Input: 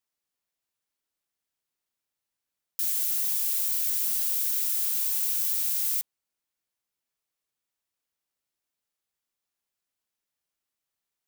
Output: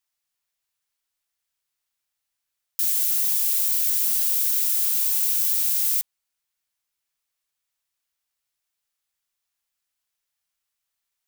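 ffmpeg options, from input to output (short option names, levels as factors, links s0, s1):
-af "equalizer=f=270:w=0.49:g=-12,volume=1.78"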